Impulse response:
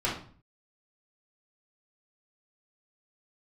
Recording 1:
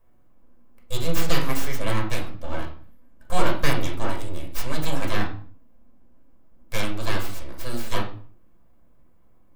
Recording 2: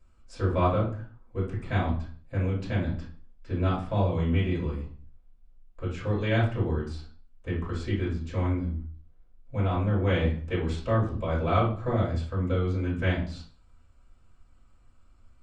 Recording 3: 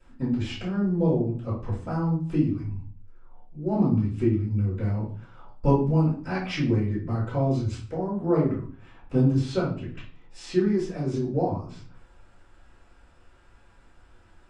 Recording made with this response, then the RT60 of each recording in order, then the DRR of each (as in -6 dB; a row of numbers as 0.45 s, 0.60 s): 2; 0.45 s, 0.45 s, 0.45 s; -0.5 dB, -8.0 dB, -17.5 dB